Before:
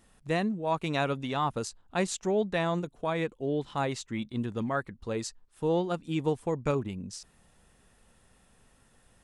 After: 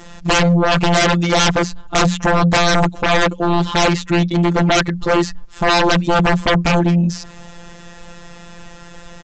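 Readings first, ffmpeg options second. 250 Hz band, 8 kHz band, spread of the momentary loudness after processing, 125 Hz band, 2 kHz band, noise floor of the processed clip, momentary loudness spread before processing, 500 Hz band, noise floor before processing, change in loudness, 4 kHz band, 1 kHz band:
+15.5 dB, +16.5 dB, 4 LU, +17.5 dB, +19.5 dB, −38 dBFS, 7 LU, +12.5 dB, −64 dBFS, +16.0 dB, +21.5 dB, +16.5 dB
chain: -filter_complex "[0:a]afftfilt=real='hypot(re,im)*cos(PI*b)':imag='0':win_size=1024:overlap=0.75,acrossover=split=2500[link_01][link_02];[link_02]acompressor=threshold=-53dB:ratio=4:attack=1:release=60[link_03];[link_01][link_03]amix=inputs=2:normalize=0,bandreject=frequency=60:width_type=h:width=6,bandreject=frequency=120:width_type=h:width=6,bandreject=frequency=180:width_type=h:width=6,aresample=16000,aeval=exprs='0.178*sin(PI/2*10*val(0)/0.178)':channel_layout=same,aresample=44100,volume=5dB"

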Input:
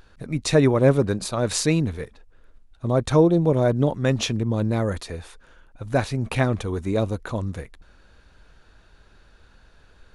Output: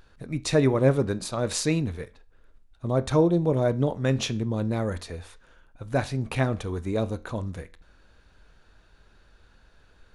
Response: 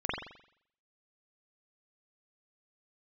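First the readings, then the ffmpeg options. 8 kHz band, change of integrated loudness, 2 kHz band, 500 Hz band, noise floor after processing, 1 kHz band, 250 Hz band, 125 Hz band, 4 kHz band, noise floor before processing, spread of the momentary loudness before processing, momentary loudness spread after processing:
−4.0 dB, −3.5 dB, −4.0 dB, −3.5 dB, −59 dBFS, −3.5 dB, −4.0 dB, −3.5 dB, −3.5 dB, −55 dBFS, 15 LU, 15 LU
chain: -filter_complex "[0:a]asplit=2[link_01][link_02];[1:a]atrim=start_sample=2205,asetrate=83790,aresample=44100[link_03];[link_02][link_03]afir=irnorm=-1:irlink=0,volume=-15.5dB[link_04];[link_01][link_04]amix=inputs=2:normalize=0,volume=-4.5dB"

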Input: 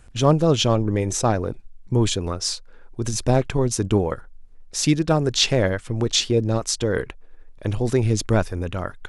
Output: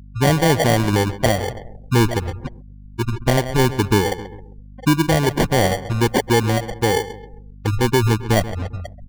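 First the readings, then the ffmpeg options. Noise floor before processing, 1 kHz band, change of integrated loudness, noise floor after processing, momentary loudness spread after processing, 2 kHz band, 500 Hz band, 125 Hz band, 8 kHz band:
−45 dBFS, +6.5 dB, +3.0 dB, −40 dBFS, 13 LU, +8.0 dB, +2.0 dB, +3.0 dB, −2.5 dB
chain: -filter_complex "[0:a]afftfilt=real='re*gte(hypot(re,im),0.282)':imag='im*gte(hypot(re,im),0.282)':win_size=1024:overlap=0.75,lowshelf=frequency=110:gain=-3.5,bandreject=frequency=1800:width=5.2,asplit=2[link_01][link_02];[link_02]adelay=133,lowpass=frequency=4600:poles=1,volume=-15dB,asplit=2[link_03][link_04];[link_04]adelay=133,lowpass=frequency=4600:poles=1,volume=0.43,asplit=2[link_05][link_06];[link_06]adelay=133,lowpass=frequency=4600:poles=1,volume=0.43,asplit=2[link_07][link_08];[link_08]adelay=133,lowpass=frequency=4600:poles=1,volume=0.43[link_09];[link_01][link_03][link_05][link_07][link_09]amix=inputs=5:normalize=0,adynamicequalizer=threshold=0.00631:dfrequency=2000:dqfactor=1.2:tfrequency=2000:tqfactor=1.2:attack=5:release=100:ratio=0.375:range=3.5:mode=boostabove:tftype=bell,acontrast=64,alimiter=limit=-7dB:level=0:latency=1:release=279,acrusher=samples=34:mix=1:aa=0.000001,aeval=exprs='val(0)+0.0112*(sin(2*PI*50*n/s)+sin(2*PI*2*50*n/s)/2+sin(2*PI*3*50*n/s)/3+sin(2*PI*4*50*n/s)/4+sin(2*PI*5*50*n/s)/5)':channel_layout=same,afftdn=noise_reduction=30:noise_floor=-41"

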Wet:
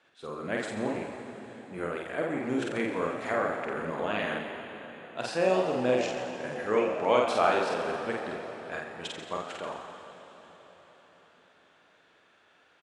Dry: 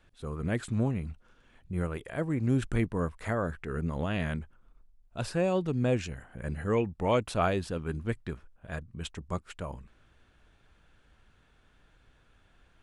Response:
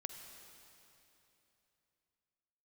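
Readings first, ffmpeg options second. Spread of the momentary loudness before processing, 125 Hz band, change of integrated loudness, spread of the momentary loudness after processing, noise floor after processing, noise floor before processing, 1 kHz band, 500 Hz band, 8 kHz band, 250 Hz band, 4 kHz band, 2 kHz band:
13 LU, −12.5 dB, +1.5 dB, 17 LU, −63 dBFS, −64 dBFS, +6.0 dB, +4.5 dB, +1.0 dB, −2.0 dB, +5.0 dB, +5.5 dB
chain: -filter_complex "[0:a]highpass=360,lowpass=6700,asplit=8[link_01][link_02][link_03][link_04][link_05][link_06][link_07][link_08];[link_02]adelay=87,afreqshift=79,volume=-9.5dB[link_09];[link_03]adelay=174,afreqshift=158,volume=-13.9dB[link_10];[link_04]adelay=261,afreqshift=237,volume=-18.4dB[link_11];[link_05]adelay=348,afreqshift=316,volume=-22.8dB[link_12];[link_06]adelay=435,afreqshift=395,volume=-27.2dB[link_13];[link_07]adelay=522,afreqshift=474,volume=-31.7dB[link_14];[link_08]adelay=609,afreqshift=553,volume=-36.1dB[link_15];[link_01][link_09][link_10][link_11][link_12][link_13][link_14][link_15]amix=inputs=8:normalize=0,asplit=2[link_16][link_17];[1:a]atrim=start_sample=2205,asetrate=27342,aresample=44100,adelay=48[link_18];[link_17][link_18]afir=irnorm=-1:irlink=0,volume=-0.5dB[link_19];[link_16][link_19]amix=inputs=2:normalize=0,volume=2dB"

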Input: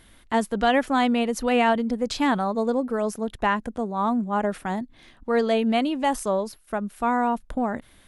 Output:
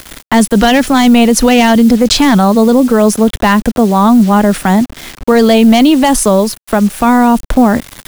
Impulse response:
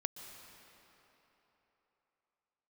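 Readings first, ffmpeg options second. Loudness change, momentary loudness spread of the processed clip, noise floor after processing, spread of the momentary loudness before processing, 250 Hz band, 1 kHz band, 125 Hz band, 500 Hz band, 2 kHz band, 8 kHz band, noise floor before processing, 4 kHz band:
+15.5 dB, 5 LU, −38 dBFS, 9 LU, +18.0 dB, +11.5 dB, +20.0 dB, +13.0 dB, +12.5 dB, +22.0 dB, −54 dBFS, +17.0 dB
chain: -filter_complex "[0:a]acrusher=bits=7:mix=0:aa=0.000001,volume=13.5dB,asoftclip=hard,volume=-13.5dB,acrossover=split=280|3000[link_01][link_02][link_03];[link_02]acompressor=threshold=-32dB:ratio=2.5[link_04];[link_01][link_04][link_03]amix=inputs=3:normalize=0,apsyclip=23dB,volume=-1.5dB"

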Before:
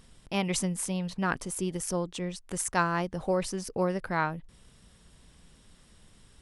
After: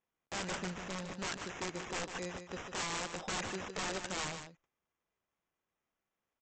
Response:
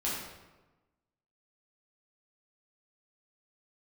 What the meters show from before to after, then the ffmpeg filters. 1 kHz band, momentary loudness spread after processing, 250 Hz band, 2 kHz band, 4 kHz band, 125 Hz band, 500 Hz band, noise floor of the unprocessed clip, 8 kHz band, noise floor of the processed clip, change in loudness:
−9.5 dB, 5 LU, −12.5 dB, −5.5 dB, −1.0 dB, −13.0 dB, −11.0 dB, −59 dBFS, −7.5 dB, below −85 dBFS, −8.5 dB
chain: -filter_complex "[0:a]highpass=frequency=680:poles=1,deesser=0.8,agate=range=-27dB:threshold=-54dB:ratio=16:detection=peak,acrossover=split=870[link_01][link_02];[link_02]asoftclip=type=tanh:threshold=-31.5dB[link_03];[link_01][link_03]amix=inputs=2:normalize=0,acrusher=samples=10:mix=1:aa=0.000001,aresample=16000,aeval=exprs='(mod(39.8*val(0)+1,2)-1)/39.8':channel_layout=same,aresample=44100,aecho=1:1:151:0.376"

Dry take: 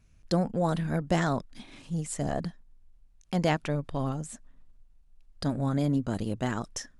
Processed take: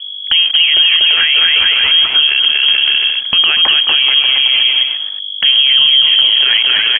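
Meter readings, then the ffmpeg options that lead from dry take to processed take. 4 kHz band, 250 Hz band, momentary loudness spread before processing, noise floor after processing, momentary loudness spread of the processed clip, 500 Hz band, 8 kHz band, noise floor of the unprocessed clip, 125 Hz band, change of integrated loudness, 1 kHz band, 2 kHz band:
+41.0 dB, below −10 dB, 10 LU, −24 dBFS, 5 LU, −4.0 dB, below −25 dB, −59 dBFS, below −15 dB, +22.5 dB, +6.0 dB, +27.0 dB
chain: -filter_complex "[0:a]aeval=exprs='val(0)+0.5*0.01*sgn(val(0))':channel_layout=same,agate=range=-37dB:threshold=-40dB:ratio=16:detection=peak,highpass=59,acrossover=split=710[link_01][link_02];[link_02]volume=24.5dB,asoftclip=hard,volume=-24.5dB[link_03];[link_01][link_03]amix=inputs=2:normalize=0,aeval=exprs='val(0)+0.00224*(sin(2*PI*50*n/s)+sin(2*PI*2*50*n/s)/2+sin(2*PI*3*50*n/s)/3+sin(2*PI*4*50*n/s)/4+sin(2*PI*5*50*n/s)/5)':channel_layout=same,asplit=2[link_04][link_05];[link_05]aecho=0:1:240|432|585.6|708.5|806.8:0.631|0.398|0.251|0.158|0.1[link_06];[link_04][link_06]amix=inputs=2:normalize=0,lowpass=frequency=2900:width_type=q:width=0.5098,lowpass=frequency=2900:width_type=q:width=0.6013,lowpass=frequency=2900:width_type=q:width=0.9,lowpass=frequency=2900:width_type=q:width=2.563,afreqshift=-3400,acompressor=threshold=-33dB:ratio=3,alimiter=level_in=29.5dB:limit=-1dB:release=50:level=0:latency=1,volume=-1dB"

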